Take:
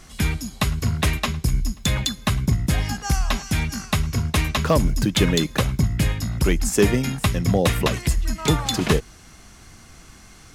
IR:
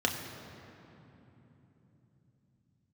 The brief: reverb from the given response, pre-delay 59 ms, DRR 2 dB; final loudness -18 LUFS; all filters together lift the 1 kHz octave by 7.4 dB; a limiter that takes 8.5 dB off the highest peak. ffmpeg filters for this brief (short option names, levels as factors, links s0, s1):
-filter_complex "[0:a]equalizer=f=1000:t=o:g=9,alimiter=limit=0.266:level=0:latency=1,asplit=2[s0][s1];[1:a]atrim=start_sample=2205,adelay=59[s2];[s1][s2]afir=irnorm=-1:irlink=0,volume=0.282[s3];[s0][s3]amix=inputs=2:normalize=0,volume=1.33"